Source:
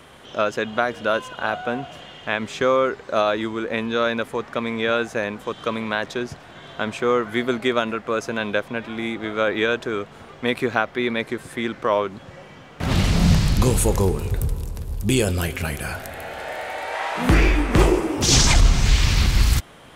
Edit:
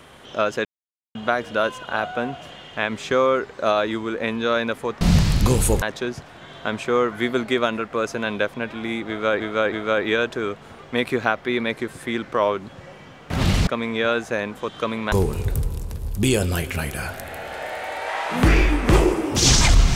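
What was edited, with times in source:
0:00.65: splice in silence 0.50 s
0:04.51–0:05.96: swap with 0:13.17–0:13.98
0:09.22–0:09.54: repeat, 3 plays

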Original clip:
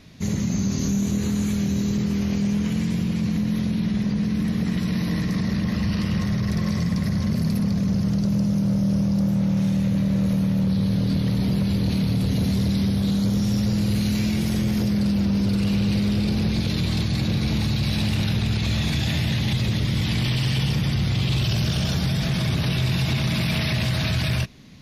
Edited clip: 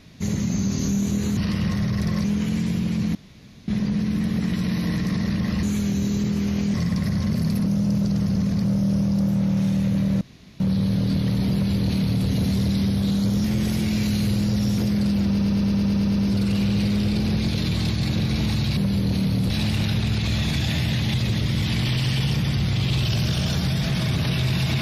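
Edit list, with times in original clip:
0:01.37–0:02.48: swap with 0:05.87–0:06.74
0:03.39–0:03.92: fill with room tone
0:07.66–0:08.64: reverse
0:10.21–0:10.60: fill with room tone
0:11.54–0:12.27: duplicate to 0:17.89
0:13.44–0:14.78: reverse
0:15.28: stutter 0.11 s, 9 plays

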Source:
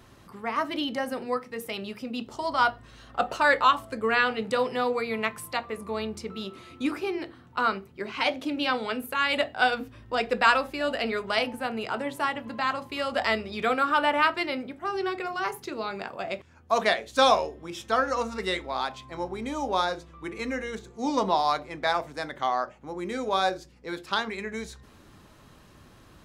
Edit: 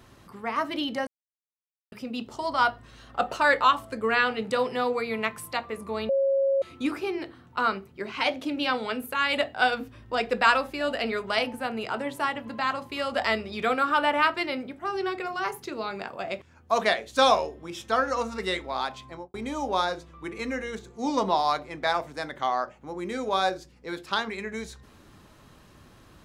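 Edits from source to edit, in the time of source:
0:01.07–0:01.92: silence
0:06.09–0:06.62: beep over 546 Hz −20 dBFS
0:19.06–0:19.34: fade out and dull

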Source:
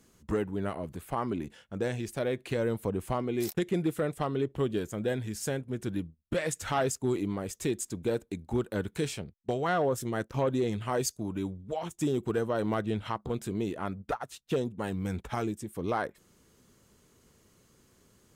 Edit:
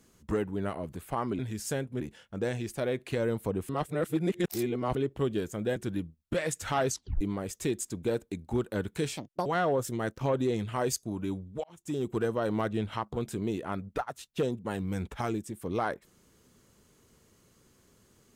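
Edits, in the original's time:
0:03.08–0:04.34: reverse
0:05.15–0:05.76: move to 0:01.39
0:06.89: tape stop 0.32 s
0:09.17–0:09.59: play speed 146%
0:11.77–0:12.26: fade in

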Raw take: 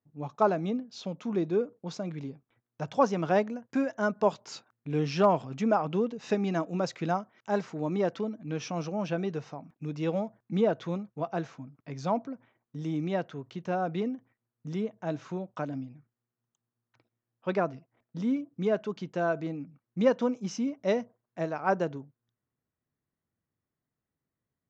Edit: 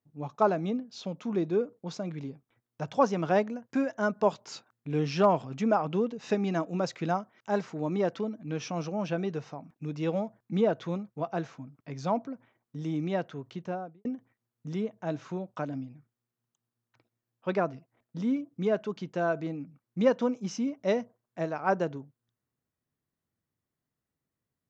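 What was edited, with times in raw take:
0:13.52–0:14.05: fade out and dull

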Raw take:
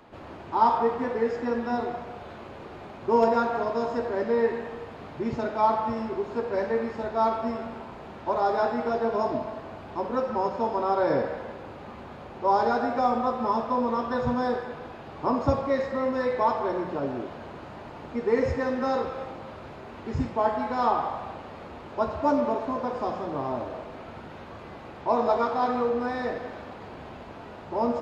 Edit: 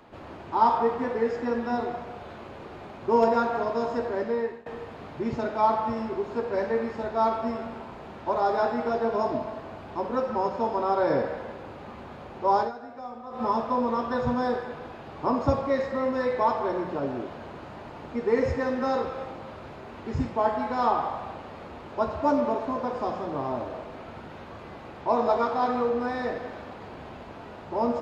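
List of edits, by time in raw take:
0:03.97–0:04.66: fade out equal-power, to −21.5 dB
0:12.59–0:13.43: duck −15 dB, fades 0.13 s

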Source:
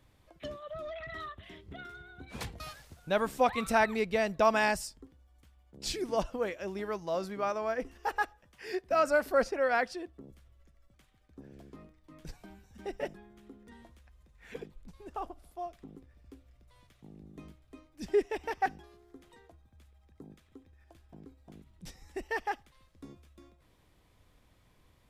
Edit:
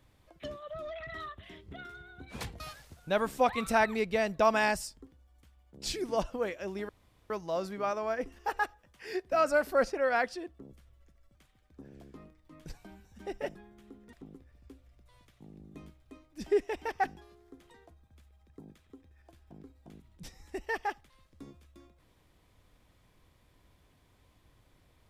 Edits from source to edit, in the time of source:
0:06.89: splice in room tone 0.41 s
0:13.72–0:15.75: remove

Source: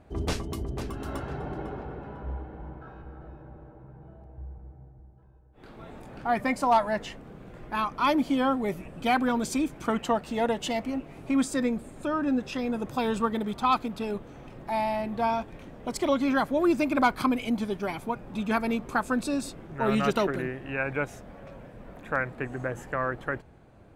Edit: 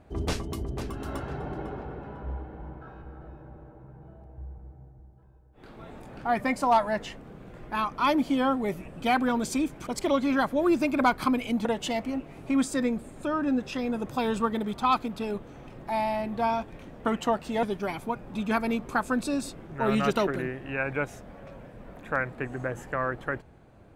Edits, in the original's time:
0:09.87–0:10.45: swap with 0:15.85–0:17.63

